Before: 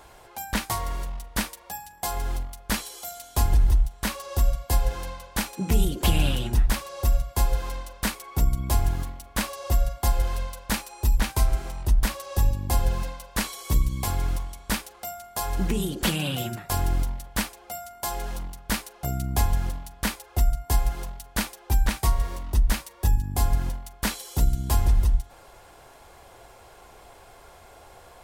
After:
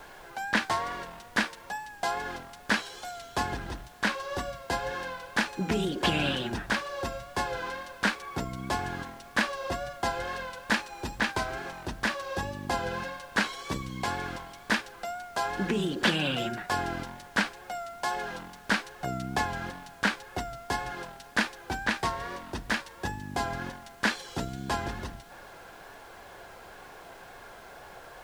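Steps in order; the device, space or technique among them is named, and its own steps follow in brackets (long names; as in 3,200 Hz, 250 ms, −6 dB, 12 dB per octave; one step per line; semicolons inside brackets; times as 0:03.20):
horn gramophone (band-pass filter 210–4,500 Hz; parametric band 1,600 Hz +9 dB 0.27 octaves; tape wow and flutter; pink noise bed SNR 23 dB)
level +1.5 dB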